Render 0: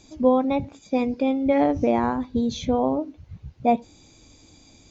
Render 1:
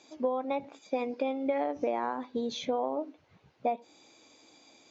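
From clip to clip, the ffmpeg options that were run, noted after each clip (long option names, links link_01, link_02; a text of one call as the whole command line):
ffmpeg -i in.wav -af "highpass=450,aemphasis=mode=reproduction:type=50fm,acompressor=threshold=-26dB:ratio=10" out.wav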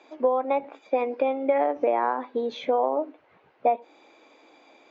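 ffmpeg -i in.wav -filter_complex "[0:a]acrossover=split=300 2800:gain=0.112 1 0.0794[link_01][link_02][link_03];[link_01][link_02][link_03]amix=inputs=3:normalize=0,volume=8.5dB" out.wav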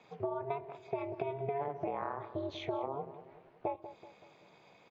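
ffmpeg -i in.wav -filter_complex "[0:a]acompressor=threshold=-29dB:ratio=3,aeval=exprs='val(0)*sin(2*PI*140*n/s)':channel_layout=same,asplit=2[link_01][link_02];[link_02]adelay=190,lowpass=frequency=1300:poles=1,volume=-11.5dB,asplit=2[link_03][link_04];[link_04]adelay=190,lowpass=frequency=1300:poles=1,volume=0.51,asplit=2[link_05][link_06];[link_06]adelay=190,lowpass=frequency=1300:poles=1,volume=0.51,asplit=2[link_07][link_08];[link_08]adelay=190,lowpass=frequency=1300:poles=1,volume=0.51,asplit=2[link_09][link_10];[link_10]adelay=190,lowpass=frequency=1300:poles=1,volume=0.51[link_11];[link_01][link_03][link_05][link_07][link_09][link_11]amix=inputs=6:normalize=0,volume=-3.5dB" out.wav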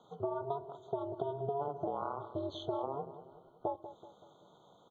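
ffmpeg -i in.wav -af "afftfilt=real='re*eq(mod(floor(b*sr/1024/1500),2),0)':imag='im*eq(mod(floor(b*sr/1024/1500),2),0)':win_size=1024:overlap=0.75" out.wav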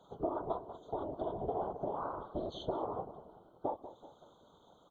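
ffmpeg -i in.wav -af "afftfilt=real='hypot(re,im)*cos(2*PI*random(0))':imag='hypot(re,im)*sin(2*PI*random(1))':win_size=512:overlap=0.75,volume=5.5dB" out.wav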